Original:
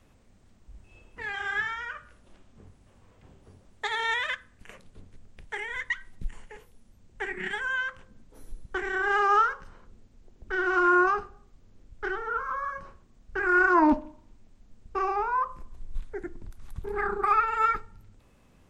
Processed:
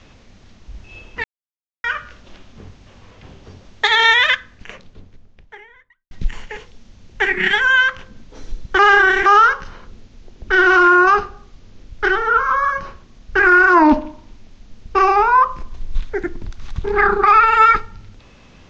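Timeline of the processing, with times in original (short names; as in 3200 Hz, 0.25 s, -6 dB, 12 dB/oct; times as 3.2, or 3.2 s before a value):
1.24–1.84 mute
4.02–6.11 studio fade out
8.79–9.26 reverse
whole clip: steep low-pass 6700 Hz 48 dB/oct; bell 3600 Hz +7 dB 2.1 oct; maximiser +15 dB; gain -2 dB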